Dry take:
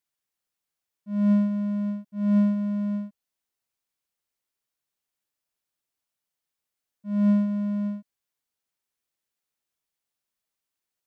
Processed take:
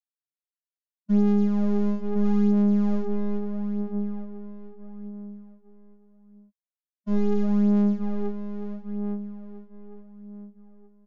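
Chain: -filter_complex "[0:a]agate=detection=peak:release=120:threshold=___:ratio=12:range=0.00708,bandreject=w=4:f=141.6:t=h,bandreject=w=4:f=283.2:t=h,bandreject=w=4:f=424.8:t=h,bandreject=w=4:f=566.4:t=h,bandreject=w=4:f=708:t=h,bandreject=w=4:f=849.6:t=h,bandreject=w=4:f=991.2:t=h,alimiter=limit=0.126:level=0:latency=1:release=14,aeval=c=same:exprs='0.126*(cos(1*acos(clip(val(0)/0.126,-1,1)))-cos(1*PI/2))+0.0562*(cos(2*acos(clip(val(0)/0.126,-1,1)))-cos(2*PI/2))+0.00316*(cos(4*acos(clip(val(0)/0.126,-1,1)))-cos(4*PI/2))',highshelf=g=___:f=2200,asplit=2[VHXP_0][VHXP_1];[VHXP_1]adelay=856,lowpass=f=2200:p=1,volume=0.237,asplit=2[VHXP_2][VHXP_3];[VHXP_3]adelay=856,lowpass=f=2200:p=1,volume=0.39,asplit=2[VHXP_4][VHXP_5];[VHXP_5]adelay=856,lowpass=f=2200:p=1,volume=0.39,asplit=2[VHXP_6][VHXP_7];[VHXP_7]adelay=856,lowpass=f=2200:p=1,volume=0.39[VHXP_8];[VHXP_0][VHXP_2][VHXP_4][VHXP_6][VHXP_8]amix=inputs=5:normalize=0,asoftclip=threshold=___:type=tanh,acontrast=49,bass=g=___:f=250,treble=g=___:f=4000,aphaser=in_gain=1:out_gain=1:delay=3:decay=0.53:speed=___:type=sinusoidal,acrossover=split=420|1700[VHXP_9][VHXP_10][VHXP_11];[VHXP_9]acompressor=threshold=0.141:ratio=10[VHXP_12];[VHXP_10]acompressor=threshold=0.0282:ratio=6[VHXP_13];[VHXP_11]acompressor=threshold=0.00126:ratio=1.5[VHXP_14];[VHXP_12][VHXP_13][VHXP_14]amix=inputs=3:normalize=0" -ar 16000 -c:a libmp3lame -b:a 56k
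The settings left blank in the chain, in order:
0.0141, -2, 0.2, 4, 11, 0.77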